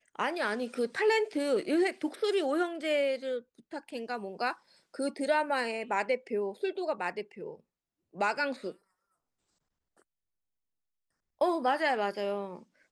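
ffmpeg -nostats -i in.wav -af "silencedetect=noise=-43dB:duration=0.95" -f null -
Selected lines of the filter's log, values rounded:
silence_start: 8.72
silence_end: 11.41 | silence_duration: 2.69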